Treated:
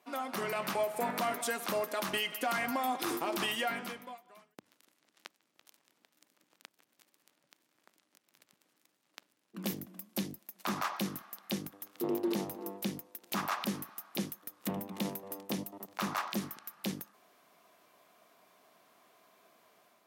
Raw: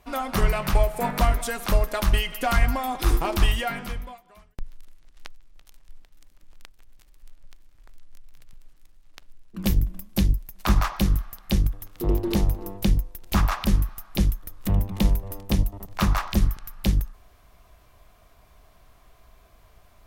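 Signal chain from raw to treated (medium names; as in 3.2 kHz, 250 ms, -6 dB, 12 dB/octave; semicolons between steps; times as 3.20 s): high-pass 210 Hz 24 dB/octave; peak limiter -19 dBFS, peak gain reduction 7 dB; level rider gain up to 4 dB; trim -8 dB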